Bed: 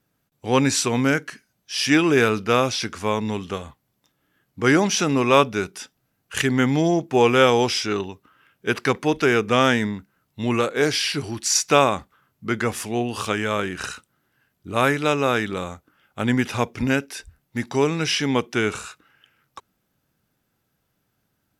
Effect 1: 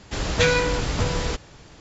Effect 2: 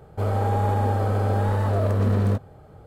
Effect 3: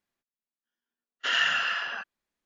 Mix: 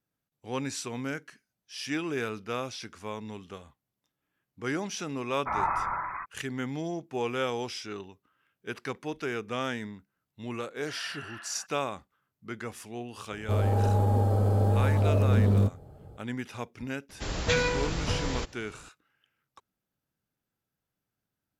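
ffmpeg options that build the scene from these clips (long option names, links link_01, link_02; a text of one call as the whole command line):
ffmpeg -i bed.wav -i cue0.wav -i cue1.wav -i cue2.wav -filter_complex "[3:a]asplit=2[link_01][link_02];[0:a]volume=-14.5dB[link_03];[link_01]lowpass=frequency=2300:width_type=q:width=0.5098,lowpass=frequency=2300:width_type=q:width=0.6013,lowpass=frequency=2300:width_type=q:width=0.9,lowpass=frequency=2300:width_type=q:width=2.563,afreqshift=-2700[link_04];[link_02]lowpass=2400[link_05];[2:a]equalizer=frequency=1800:width_type=o:width=2.1:gain=-11[link_06];[link_04]atrim=end=2.45,asetpts=PTS-STARTPTS,volume=-1dB,afade=type=in:duration=0.004:curve=hsin,afade=type=out:start_time=2.446:duration=0.004:curve=hsin,adelay=4220[link_07];[link_05]atrim=end=2.45,asetpts=PTS-STARTPTS,volume=-14dB,afade=type=in:duration=0.004:curve=hsin,afade=type=out:start_time=2.446:duration=0.004:curve=hsin,adelay=9630[link_08];[link_06]atrim=end=2.86,asetpts=PTS-STARTPTS,volume=-1dB,afade=type=in:duration=0.004:curve=hsin,afade=type=out:start_time=2.856:duration=0.004:curve=hsin,adelay=13310[link_09];[1:a]atrim=end=1.8,asetpts=PTS-STARTPTS,volume=-6.5dB,afade=type=in:duration=0.004:curve=hsin,afade=type=out:start_time=1.796:duration=0.004:curve=hsin,adelay=17090[link_10];[link_03][link_07][link_08][link_09][link_10]amix=inputs=5:normalize=0" out.wav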